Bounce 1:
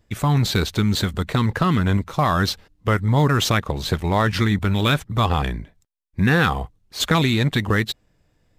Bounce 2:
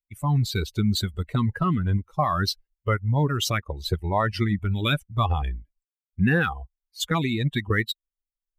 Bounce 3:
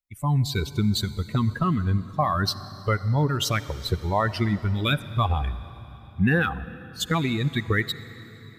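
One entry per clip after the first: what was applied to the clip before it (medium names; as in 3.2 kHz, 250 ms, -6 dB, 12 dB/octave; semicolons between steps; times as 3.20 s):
expander on every frequency bin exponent 2; gain riding within 3 dB 0.5 s
reverberation RT60 3.9 s, pre-delay 46 ms, DRR 15 dB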